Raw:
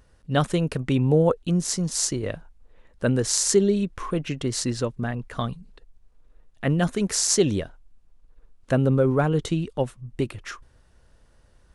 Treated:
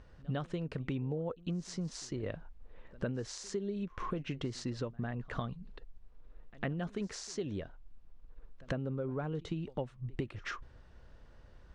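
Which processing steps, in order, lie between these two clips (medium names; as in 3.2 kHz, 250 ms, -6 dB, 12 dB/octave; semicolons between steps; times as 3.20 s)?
compression 12:1, threshold -34 dBFS, peak gain reduction 21 dB; distance through air 140 m; on a send: reverse echo 102 ms -22.5 dB; on the sum: trim +1 dB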